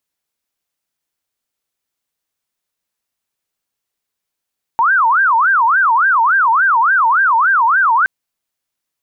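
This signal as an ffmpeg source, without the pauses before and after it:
ffmpeg -f lavfi -i "aevalsrc='0.355*sin(2*PI*(1248*t-352/(2*PI*3.5)*sin(2*PI*3.5*t)))':duration=3.27:sample_rate=44100" out.wav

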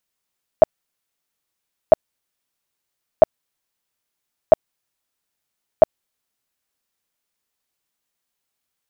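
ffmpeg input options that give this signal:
ffmpeg -f lavfi -i "aevalsrc='0.75*sin(2*PI*635*mod(t,1.3))*lt(mod(t,1.3),10/635)':duration=6.5:sample_rate=44100" out.wav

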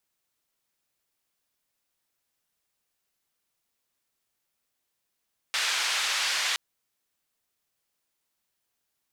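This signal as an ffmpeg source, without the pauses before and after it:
ffmpeg -f lavfi -i "anoisesrc=color=white:duration=1.02:sample_rate=44100:seed=1,highpass=frequency=1200,lowpass=frequency=4600,volume=-14.9dB" out.wav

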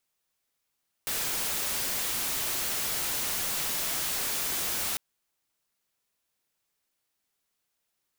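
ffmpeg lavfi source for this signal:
ffmpeg -f lavfi -i "anoisesrc=color=white:amplitude=0.0517:duration=3.9:sample_rate=44100:seed=1" out.wav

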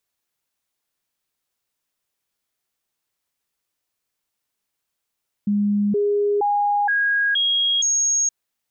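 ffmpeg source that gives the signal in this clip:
ffmpeg -f lavfi -i "aevalsrc='0.15*clip(min(mod(t,0.47),0.47-mod(t,0.47))/0.005,0,1)*sin(2*PI*205*pow(2,floor(t/0.47)/1)*mod(t,0.47))':duration=2.82:sample_rate=44100" out.wav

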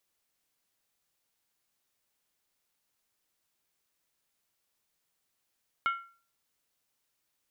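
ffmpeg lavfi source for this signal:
ffmpeg -f lavfi -i "aevalsrc='0.0708*pow(10,-3*t/0.41)*sin(2*PI*1370*t)+0.0299*pow(10,-3*t/0.325)*sin(2*PI*2183.8*t)+0.0126*pow(10,-3*t/0.281)*sin(2*PI*2926.3*t)+0.00531*pow(10,-3*t/0.271)*sin(2*PI*3145.5*t)+0.00224*pow(10,-3*t/0.252)*sin(2*PI*3634.6*t)':duration=0.63:sample_rate=44100" out.wav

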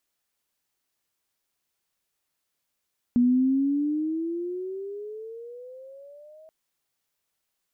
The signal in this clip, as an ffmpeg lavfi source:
ffmpeg -f lavfi -i "aevalsrc='pow(10,(-16-31*t/3.33)/20)*sin(2*PI*240*3.33/(17*log(2)/12)*(exp(17*log(2)/12*t/3.33)-1))':duration=3.33:sample_rate=44100" out.wav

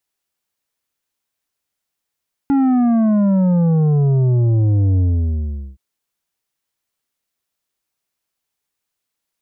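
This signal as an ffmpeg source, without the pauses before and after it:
ffmpeg -f lavfi -i "aevalsrc='0.237*clip((3.27-t)/0.78,0,1)*tanh(2.51*sin(2*PI*280*3.27/log(65/280)*(exp(log(65/280)*t/3.27)-1)))/tanh(2.51)':duration=3.27:sample_rate=44100" out.wav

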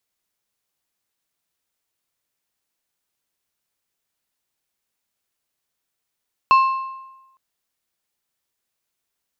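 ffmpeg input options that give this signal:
ffmpeg -f lavfi -i "aevalsrc='0.398*pow(10,-3*t/1.05)*sin(2*PI*1060*t)+0.106*pow(10,-3*t/0.798)*sin(2*PI*2650*t)+0.0282*pow(10,-3*t/0.693)*sin(2*PI*4240*t)+0.0075*pow(10,-3*t/0.648)*sin(2*PI*5300*t)+0.002*pow(10,-3*t/0.599)*sin(2*PI*6890*t)':duration=0.86:sample_rate=44100" out.wav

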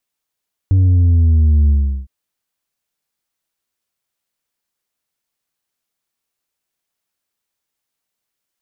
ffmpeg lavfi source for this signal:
ffmpeg -f lavfi -i "aevalsrc='0.355*clip((1.36-t)/0.38,0,1)*tanh(1.58*sin(2*PI*96*1.36/log(65/96)*(exp(log(65/96)*t/1.36)-1)))/tanh(1.58)':duration=1.36:sample_rate=44100" out.wav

